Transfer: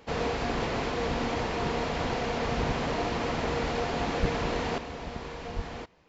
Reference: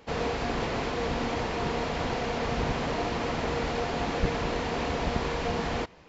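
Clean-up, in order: clip repair -16 dBFS; 5.55–5.67 HPF 140 Hz 24 dB/oct; gain 0 dB, from 4.78 s +9 dB

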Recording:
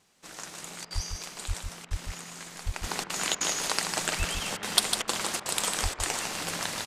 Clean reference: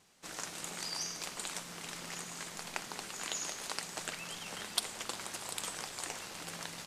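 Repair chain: de-plosive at 0.94/1.47/1.9/2.65/4.18/5.82; interpolate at 0.85/1.85/3.04/3.35/4.57/5.02/5.4/5.94, 56 ms; inverse comb 0.152 s -6 dB; gain 0 dB, from 2.83 s -10 dB

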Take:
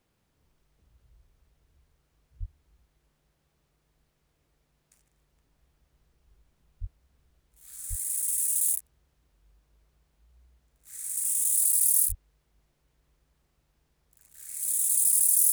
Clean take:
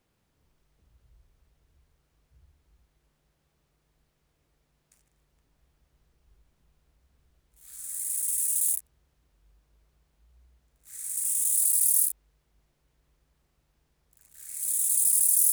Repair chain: de-plosive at 2.39/6.8/7.89/12.08

